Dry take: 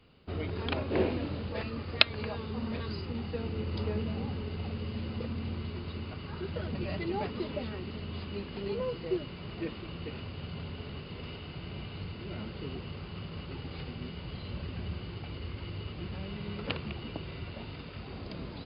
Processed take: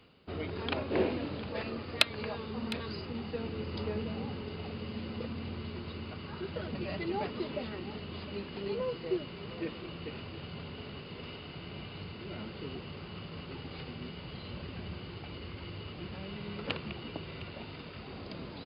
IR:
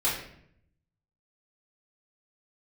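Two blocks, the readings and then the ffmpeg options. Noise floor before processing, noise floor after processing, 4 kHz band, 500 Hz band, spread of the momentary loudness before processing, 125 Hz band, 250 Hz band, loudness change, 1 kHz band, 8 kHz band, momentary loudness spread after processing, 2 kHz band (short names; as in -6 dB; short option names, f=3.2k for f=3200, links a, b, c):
-44 dBFS, -46 dBFS, -2.0 dB, -0.5 dB, 8 LU, -5.0 dB, -1.5 dB, -2.0 dB, 0.0 dB, n/a, 10 LU, -1.5 dB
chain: -af "lowshelf=f=90:g=-11.5,areverse,acompressor=mode=upward:threshold=-46dB:ratio=2.5,areverse,asoftclip=type=tanh:threshold=-9dB,aecho=1:1:708:0.168"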